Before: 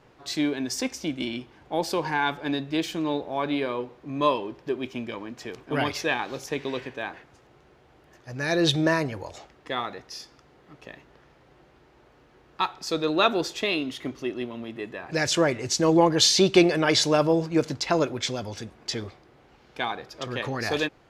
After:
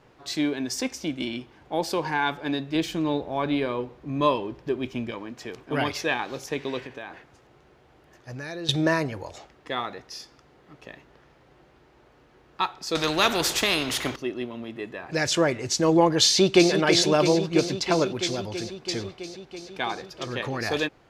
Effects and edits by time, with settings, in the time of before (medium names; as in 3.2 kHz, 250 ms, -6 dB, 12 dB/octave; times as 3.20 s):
2.75–5.11 s: bass shelf 130 Hz +11 dB
6.80–8.69 s: compression, threshold -32 dBFS
12.95–14.16 s: spectrum-flattening compressor 2:1
16.26–16.72 s: echo throw 330 ms, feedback 80%, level -7.5 dB